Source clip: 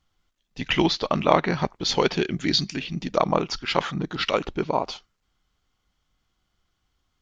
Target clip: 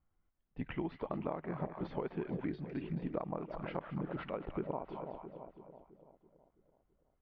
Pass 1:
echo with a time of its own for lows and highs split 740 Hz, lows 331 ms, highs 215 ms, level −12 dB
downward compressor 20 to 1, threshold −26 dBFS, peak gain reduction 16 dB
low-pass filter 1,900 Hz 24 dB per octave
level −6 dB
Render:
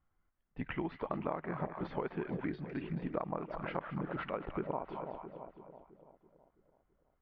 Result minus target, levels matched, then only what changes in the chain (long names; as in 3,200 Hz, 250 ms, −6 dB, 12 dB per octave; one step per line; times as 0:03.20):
2,000 Hz band +4.0 dB
add after low-pass filter: parametric band 1,500 Hz −6 dB 1.6 octaves